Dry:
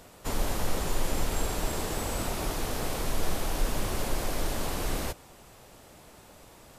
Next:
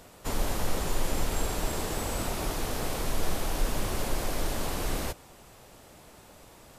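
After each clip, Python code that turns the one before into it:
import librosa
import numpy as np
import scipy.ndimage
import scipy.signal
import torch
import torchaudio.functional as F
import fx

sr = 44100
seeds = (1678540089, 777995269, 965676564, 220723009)

y = x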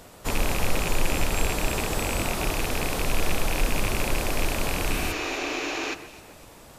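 y = fx.rattle_buzz(x, sr, strikes_db=-33.0, level_db=-21.0)
y = fx.spec_repair(y, sr, seeds[0], start_s=4.95, length_s=0.96, low_hz=260.0, high_hz=7300.0, source='before')
y = fx.echo_alternate(y, sr, ms=129, hz=2200.0, feedback_pct=57, wet_db=-11.5)
y = y * librosa.db_to_amplitude(4.0)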